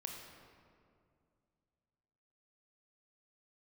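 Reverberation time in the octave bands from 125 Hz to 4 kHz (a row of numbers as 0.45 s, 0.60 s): 3.1 s, 2.8 s, 2.5 s, 2.2 s, 1.7 s, 1.3 s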